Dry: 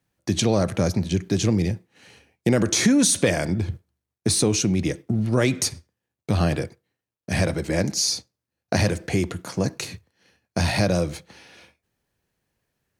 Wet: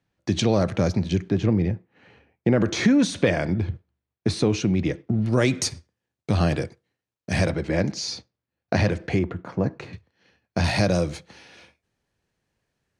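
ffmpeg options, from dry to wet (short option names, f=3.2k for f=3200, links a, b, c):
-af "asetnsamples=n=441:p=0,asendcmd='1.3 lowpass f 2000;2.61 lowpass f 3300;5.26 lowpass f 7500;7.5 lowpass f 3600;9.19 lowpass f 1700;9.93 lowpass f 4300;10.64 lowpass f 8000',lowpass=4.9k"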